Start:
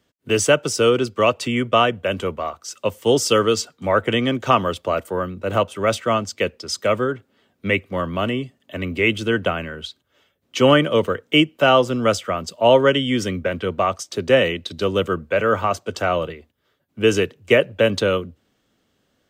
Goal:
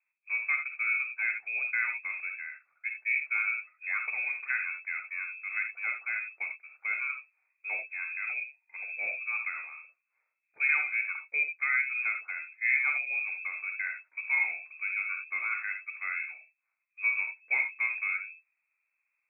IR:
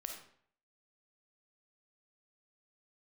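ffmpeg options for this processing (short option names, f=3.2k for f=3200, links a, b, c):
-filter_complex "[0:a]lowpass=f=2.3k:t=q:w=0.5098,lowpass=f=2.3k:t=q:w=0.6013,lowpass=f=2.3k:t=q:w=0.9,lowpass=f=2.3k:t=q:w=2.563,afreqshift=-2700,aderivative[a];[1:a]atrim=start_sample=2205,atrim=end_sample=3969[b];[a][b]afir=irnorm=-1:irlink=0"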